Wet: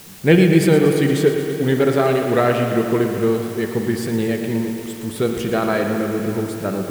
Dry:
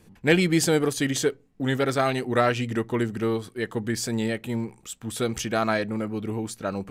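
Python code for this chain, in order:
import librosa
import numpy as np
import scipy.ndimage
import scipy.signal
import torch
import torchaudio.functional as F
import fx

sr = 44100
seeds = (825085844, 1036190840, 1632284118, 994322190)

p1 = fx.graphic_eq_15(x, sr, hz=(160, 400, 6300), db=(9, 7, -11))
p2 = fx.quant_dither(p1, sr, seeds[0], bits=6, dither='triangular')
p3 = p1 + F.gain(torch.from_numpy(p2), -3.0).numpy()
p4 = fx.rev_spring(p3, sr, rt60_s=3.2, pass_ms=(48,), chirp_ms=50, drr_db=5.0)
p5 = fx.echo_warbled(p4, sr, ms=116, feedback_pct=69, rate_hz=2.8, cents=55, wet_db=-11.0)
y = F.gain(torch.from_numpy(p5), -3.0).numpy()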